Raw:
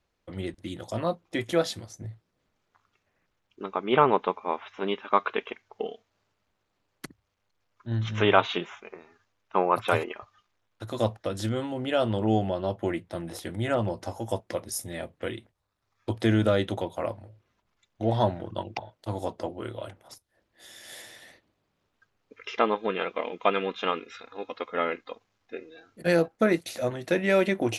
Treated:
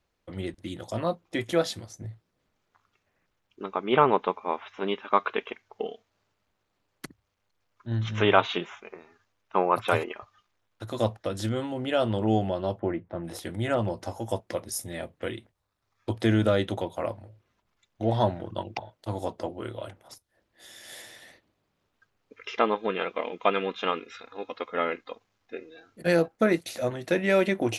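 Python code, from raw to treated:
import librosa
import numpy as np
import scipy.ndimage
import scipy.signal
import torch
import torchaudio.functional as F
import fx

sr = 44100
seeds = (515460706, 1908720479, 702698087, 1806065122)

y = fx.lowpass(x, sr, hz=1500.0, slope=12, at=(12.78, 13.23), fade=0.02)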